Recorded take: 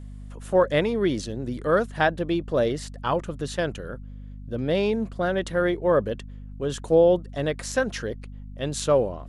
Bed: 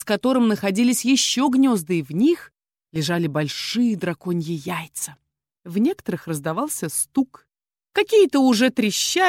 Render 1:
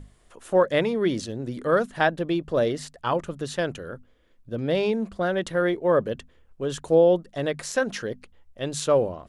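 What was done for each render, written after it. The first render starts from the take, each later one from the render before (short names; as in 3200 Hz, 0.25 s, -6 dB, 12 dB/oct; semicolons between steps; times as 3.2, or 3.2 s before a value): notches 50/100/150/200/250 Hz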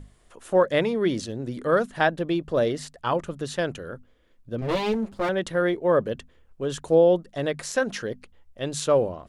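4.61–5.29 minimum comb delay 9 ms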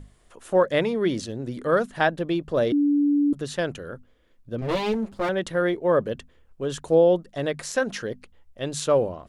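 2.72–3.33 bleep 289 Hz -17 dBFS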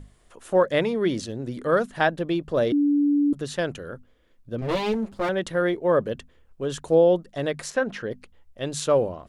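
7.7–8.11 tone controls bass 0 dB, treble -14 dB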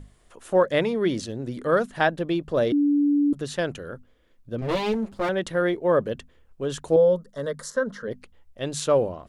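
6.96–8.08 fixed phaser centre 500 Hz, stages 8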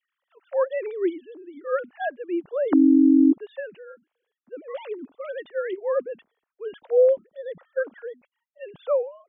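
sine-wave speech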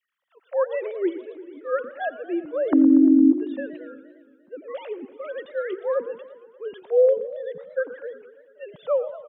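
feedback echo 86 ms, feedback 44%, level -22.5 dB; warbling echo 0.116 s, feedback 66%, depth 219 cents, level -15 dB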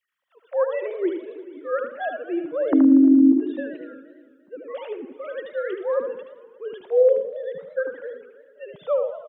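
echo 75 ms -6.5 dB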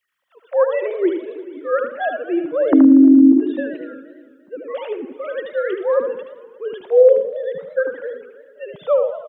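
gain +6 dB; limiter -3 dBFS, peak gain reduction 2.5 dB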